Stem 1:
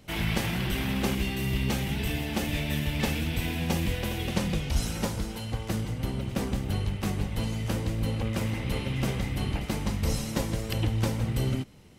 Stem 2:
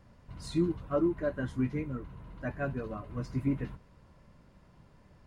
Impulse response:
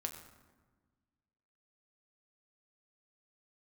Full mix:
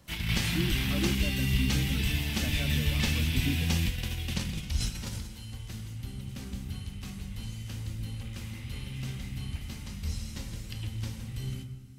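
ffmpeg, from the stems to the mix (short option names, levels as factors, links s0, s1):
-filter_complex "[0:a]equalizer=f=570:w=0.5:g=-13.5,acrossover=split=6000[s0][s1];[s1]acompressor=threshold=0.00224:ratio=4:attack=1:release=60[s2];[s0][s2]amix=inputs=2:normalize=0,volume=1,asplit=2[s3][s4];[s4]volume=0.473[s5];[1:a]highpass=80,acrossover=split=280|3000[s6][s7][s8];[s7]acompressor=threshold=0.00562:ratio=6[s9];[s6][s9][s8]amix=inputs=3:normalize=0,volume=1,asplit=2[s10][s11];[s11]apad=whole_len=528490[s12];[s3][s12]sidechaingate=range=0.0224:threshold=0.00126:ratio=16:detection=peak[s13];[2:a]atrim=start_sample=2205[s14];[s5][s14]afir=irnorm=-1:irlink=0[s15];[s13][s10][s15]amix=inputs=3:normalize=0,highshelf=f=4700:g=8"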